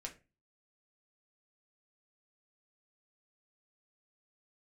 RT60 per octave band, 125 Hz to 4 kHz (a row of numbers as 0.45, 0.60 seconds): 0.45, 0.45, 0.30, 0.25, 0.30, 0.20 seconds